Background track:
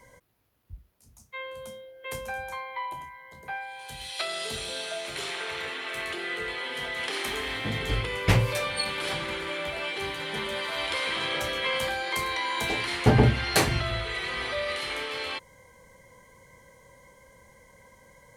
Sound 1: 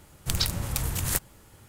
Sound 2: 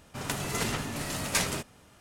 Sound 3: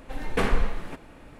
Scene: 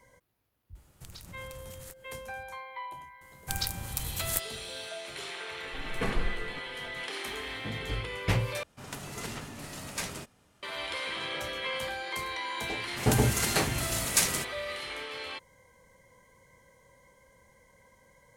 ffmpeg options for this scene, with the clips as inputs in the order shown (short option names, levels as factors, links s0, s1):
-filter_complex "[1:a]asplit=2[s0][s1];[2:a]asplit=2[s2][s3];[0:a]volume=0.501[s4];[s0]acompressor=threshold=0.02:ratio=6:attack=3.2:release=140:knee=1:detection=peak[s5];[s1]highshelf=f=6800:g=7.5[s6];[3:a]equalizer=f=140:t=o:w=0.77:g=6.5[s7];[s3]highshelf=f=5100:g=12[s8];[s4]asplit=2[s9][s10];[s9]atrim=end=8.634[s11];[s2]atrim=end=2,asetpts=PTS-STARTPTS,volume=0.398[s12];[s10]atrim=start=10.626[s13];[s5]atrim=end=1.68,asetpts=PTS-STARTPTS,volume=0.335,afade=t=in:d=0.004:c=hsin,afade=t=out:st=1.676:d=0.004:c=hsin,adelay=750[s14];[s6]atrim=end=1.68,asetpts=PTS-STARTPTS,volume=0.376,afade=t=in:d=0.004:c=hsin,afade=t=out:st=1.676:d=0.004:c=hsin,adelay=141561S[s15];[s7]atrim=end=1.39,asetpts=PTS-STARTPTS,volume=0.398,afade=t=in:d=0.004:c=hsin,afade=t=out:st=1.386:d=0.004:c=hsin,adelay=5640[s16];[s8]atrim=end=2,asetpts=PTS-STARTPTS,volume=0.668,afade=t=in:d=0.004:c=hsin,afade=t=out:st=1.996:d=0.004:c=hsin,adelay=12820[s17];[s11][s12]acrossfade=d=0.004:c1=hsin:c2=hsin[s18];[s18][s13]acrossfade=d=0.004:c1=hsin:c2=hsin[s19];[s19][s14][s15][s16][s17]amix=inputs=5:normalize=0"